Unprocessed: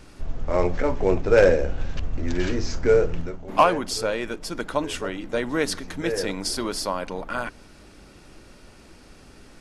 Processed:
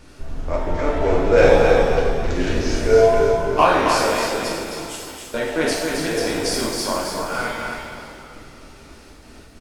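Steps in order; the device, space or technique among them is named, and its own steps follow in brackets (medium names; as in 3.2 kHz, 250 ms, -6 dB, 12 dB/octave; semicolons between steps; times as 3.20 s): 4.64–5.34 s: differentiator; trance gate with a delay (trance gate "xxxxx.xx.xx" 135 bpm; feedback delay 268 ms, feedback 34%, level -5 dB); frequency-shifting echo 309 ms, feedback 50%, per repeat -44 Hz, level -12.5 dB; pitch-shifted reverb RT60 1 s, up +7 st, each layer -8 dB, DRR -2.5 dB; trim -1 dB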